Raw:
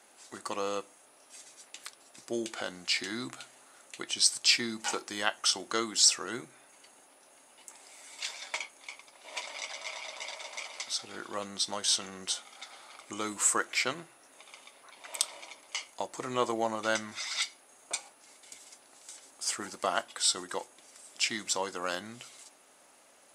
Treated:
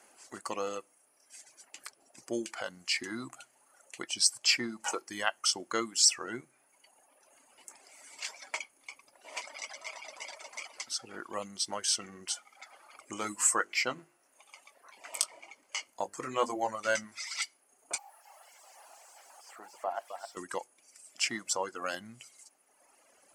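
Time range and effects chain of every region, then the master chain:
13.16–17.04 notches 50/100/150/200/250/300/350/400/450 Hz + doubler 20 ms -8 dB
17.98–20.37 switching spikes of -19.5 dBFS + band-pass 750 Hz, Q 2.9 + echo 0.263 s -5.5 dB
whole clip: reverb removal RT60 1.5 s; bell 3700 Hz -12.5 dB 0.23 oct

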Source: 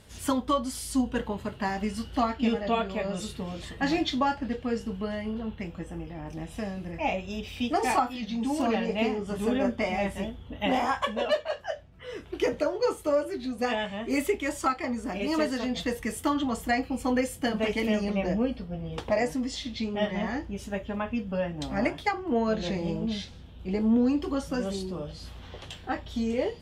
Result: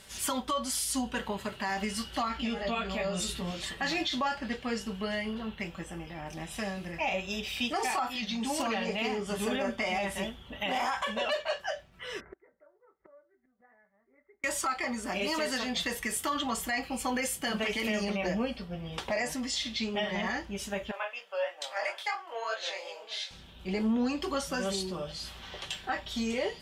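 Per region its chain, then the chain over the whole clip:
2.28–3.51 low shelf 150 Hz +7.5 dB + compressor 3:1, threshold -30 dBFS + doubler 17 ms -5.5 dB
12.2–14.44 rippled Chebyshev low-pass 2100 Hz, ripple 3 dB + flipped gate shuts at -32 dBFS, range -34 dB
20.91–23.31 Chebyshev high-pass 510 Hz, order 4 + chorus 3 Hz, delay 19.5 ms, depth 4.4 ms
whole clip: tilt shelf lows -6.5 dB, about 700 Hz; comb 5.2 ms, depth 37%; limiter -22 dBFS

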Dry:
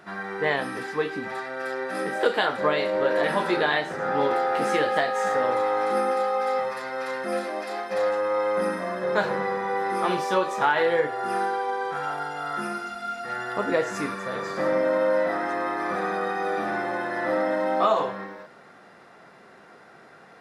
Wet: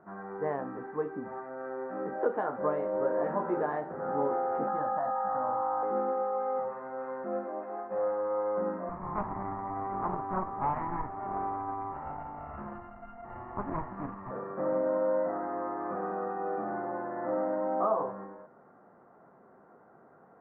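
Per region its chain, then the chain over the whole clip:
4.67–5.83 tone controls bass -4 dB, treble +6 dB + fixed phaser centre 1000 Hz, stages 4 + fast leveller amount 100%
8.89–14.31 minimum comb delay 1 ms + notch 3200 Hz, Q 6.5 + Doppler distortion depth 0.34 ms
whole clip: LPF 1200 Hz 24 dB/oct; bell 250 Hz +2.5 dB 0.26 oct; gain -6 dB

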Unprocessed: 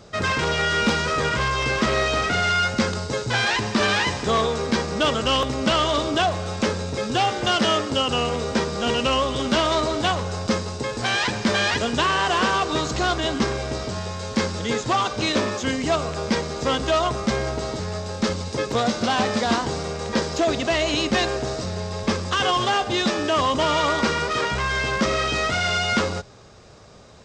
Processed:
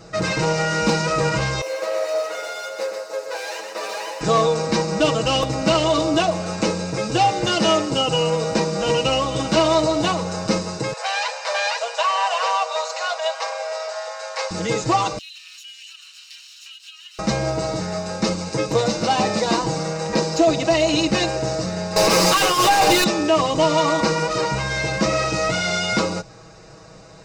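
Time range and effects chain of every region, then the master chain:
1.61–4.21 minimum comb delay 9.3 ms + ladder high-pass 480 Hz, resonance 65% + echo 0.124 s -7.5 dB
10.93–14.51 steep high-pass 520 Hz 72 dB/oct + high shelf 5000 Hz -7 dB
15.18–17.19 minimum comb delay 0.72 ms + ladder high-pass 2900 Hz, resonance 75% + compressor 5:1, threshold -39 dBFS
21.96–23.04 HPF 120 Hz + negative-ratio compressor -24 dBFS, ratio -0.5 + overdrive pedal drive 32 dB, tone 5600 Hz, clips at -11 dBFS
whole clip: notch 3300 Hz, Q 5.1; comb 6.2 ms, depth 91%; dynamic EQ 1600 Hz, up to -8 dB, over -36 dBFS, Q 1.7; gain +1.5 dB

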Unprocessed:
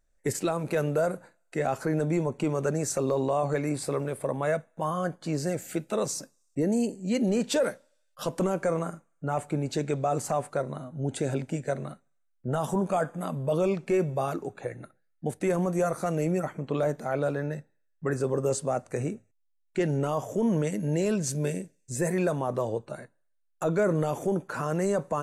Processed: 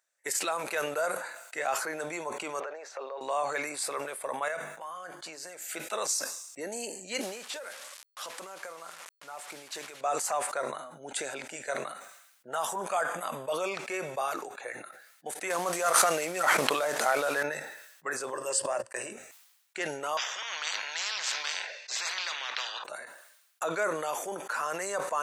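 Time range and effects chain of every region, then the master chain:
2.6–3.21 compressor 10:1, threshold -30 dBFS + resonant high-pass 520 Hz, resonance Q 1.7 + air absorption 260 m
4.48–5.65 notches 50/100/150/200/250/300/350/400 Hz + compressor 5:1, threshold -35 dBFS
7.21–10.01 delta modulation 64 kbps, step -38.5 dBFS + compressor 3:1, threshold -39 dBFS
15.5–17.43 CVSD 64 kbps + fast leveller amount 100%
18.33–19.13 notches 60/120/180/240/300/360/420/480/540 Hz + gate -36 dBFS, range -42 dB + ripple EQ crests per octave 1.3, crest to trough 9 dB
20.17–22.84 elliptic band-pass 570–4400 Hz + spectral compressor 10:1
whole clip: HPF 1000 Hz 12 dB/oct; sustainer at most 54 dB/s; gain +4 dB

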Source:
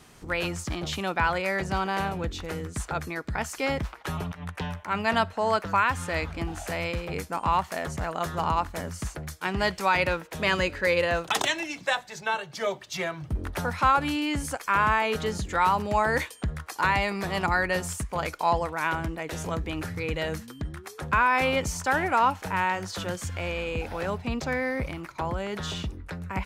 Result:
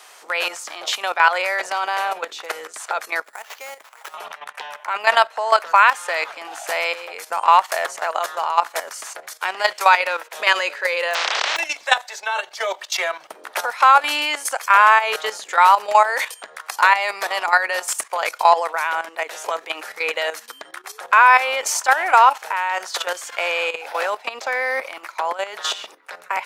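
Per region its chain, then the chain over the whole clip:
3.24–4.14 compressor 3:1, threshold -46 dBFS + sample-rate reducer 9100 Hz
11.13–11.56 spectral contrast lowered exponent 0.11 + Bessel low-pass 3500 Hz, order 6 + sustainer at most 27 dB/s
whole clip: HPF 580 Hz 24 dB/oct; level quantiser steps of 12 dB; maximiser +15 dB; gain -1 dB

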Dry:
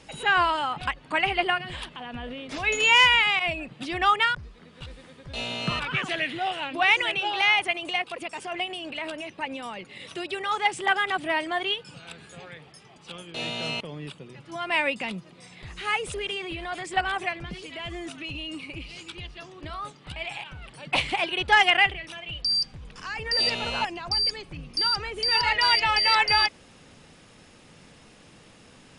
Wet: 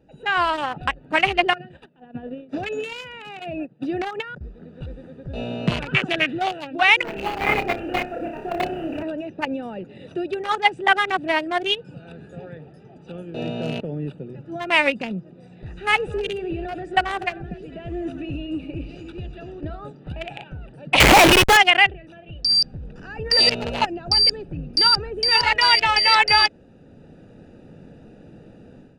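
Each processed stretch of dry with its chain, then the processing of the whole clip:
1.53–4.41 HPF 130 Hz + gate -37 dBFS, range -16 dB + compressor 10:1, threshold -27 dBFS
7.03–9.03 CVSD 16 kbps + requantised 8-bit, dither none + flutter echo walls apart 5.2 m, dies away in 0.48 s
15.66–19.61 tapped delay 93/244 ms -15.5/-12 dB + mismatched tape noise reduction encoder only
21–21.57 Schmitt trigger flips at -32.5 dBFS + low shelf 150 Hz +8.5 dB + overdrive pedal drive 21 dB, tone 5700 Hz, clips at -11.5 dBFS
whole clip: Wiener smoothing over 41 samples; low shelf 140 Hz -5 dB; AGC gain up to 13 dB; gain -1 dB

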